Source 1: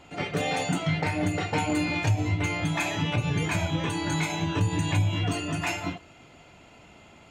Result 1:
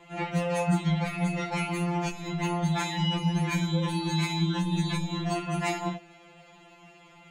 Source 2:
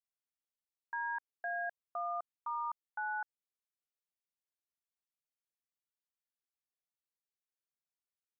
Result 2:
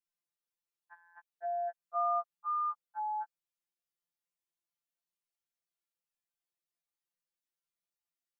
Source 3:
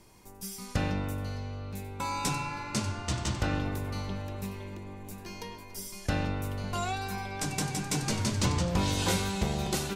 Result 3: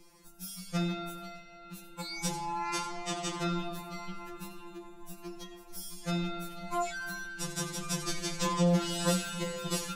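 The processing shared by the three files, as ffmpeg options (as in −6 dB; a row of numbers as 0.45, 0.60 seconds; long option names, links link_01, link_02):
-af "afftfilt=real='re*2.83*eq(mod(b,8),0)':imag='im*2.83*eq(mod(b,8),0)':win_size=2048:overlap=0.75,volume=1dB"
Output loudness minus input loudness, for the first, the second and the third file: −1.5, +4.0, −2.0 LU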